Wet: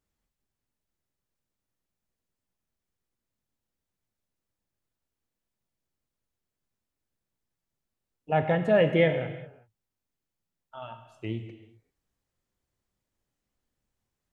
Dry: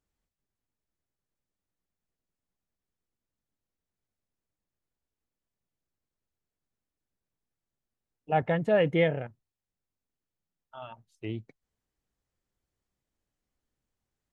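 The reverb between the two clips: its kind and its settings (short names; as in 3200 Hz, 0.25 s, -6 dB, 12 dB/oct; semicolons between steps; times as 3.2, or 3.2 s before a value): non-linear reverb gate 0.42 s falling, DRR 7 dB; gain +1.5 dB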